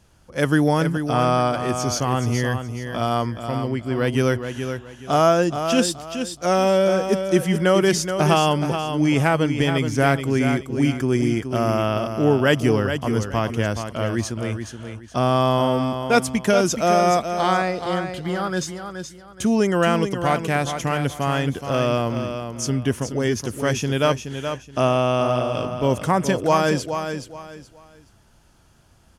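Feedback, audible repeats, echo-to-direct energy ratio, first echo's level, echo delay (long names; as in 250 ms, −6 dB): 27%, 3, −7.5 dB, −8.0 dB, 424 ms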